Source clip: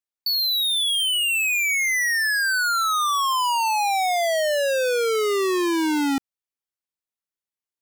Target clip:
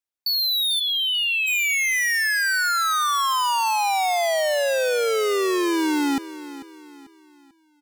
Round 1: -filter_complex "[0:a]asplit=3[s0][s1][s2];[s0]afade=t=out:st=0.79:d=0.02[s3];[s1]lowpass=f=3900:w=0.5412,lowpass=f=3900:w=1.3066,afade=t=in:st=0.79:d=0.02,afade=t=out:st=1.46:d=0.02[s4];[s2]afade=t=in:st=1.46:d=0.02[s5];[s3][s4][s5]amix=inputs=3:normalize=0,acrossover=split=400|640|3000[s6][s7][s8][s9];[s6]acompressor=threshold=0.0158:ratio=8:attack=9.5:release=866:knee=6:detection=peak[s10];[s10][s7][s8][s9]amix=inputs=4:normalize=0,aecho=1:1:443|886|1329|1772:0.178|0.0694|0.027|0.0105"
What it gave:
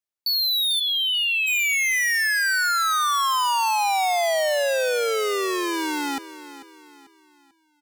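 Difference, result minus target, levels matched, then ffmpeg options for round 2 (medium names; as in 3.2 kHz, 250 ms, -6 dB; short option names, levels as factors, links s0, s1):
compression: peak gain reduction +13 dB
-filter_complex "[0:a]asplit=3[s0][s1][s2];[s0]afade=t=out:st=0.79:d=0.02[s3];[s1]lowpass=f=3900:w=0.5412,lowpass=f=3900:w=1.3066,afade=t=in:st=0.79:d=0.02,afade=t=out:st=1.46:d=0.02[s4];[s2]afade=t=in:st=1.46:d=0.02[s5];[s3][s4][s5]amix=inputs=3:normalize=0,aecho=1:1:443|886|1329|1772:0.178|0.0694|0.027|0.0105"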